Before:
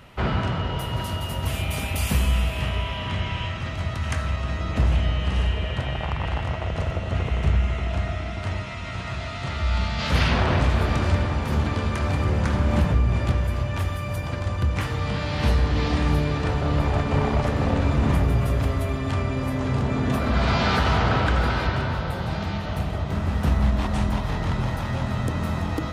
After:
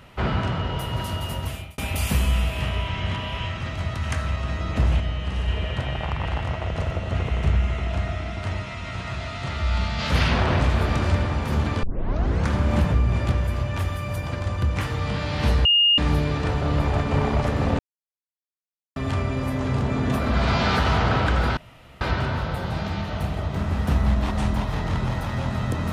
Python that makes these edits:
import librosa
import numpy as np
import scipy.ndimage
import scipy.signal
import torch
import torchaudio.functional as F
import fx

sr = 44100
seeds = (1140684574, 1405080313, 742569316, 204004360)

y = fx.edit(x, sr, fx.fade_out_span(start_s=1.33, length_s=0.45),
    fx.reverse_span(start_s=2.88, length_s=0.5),
    fx.clip_gain(start_s=5.0, length_s=0.48, db=-3.5),
    fx.tape_start(start_s=11.83, length_s=0.64),
    fx.bleep(start_s=15.65, length_s=0.33, hz=2840.0, db=-14.0),
    fx.silence(start_s=17.79, length_s=1.17),
    fx.insert_room_tone(at_s=21.57, length_s=0.44), tone=tone)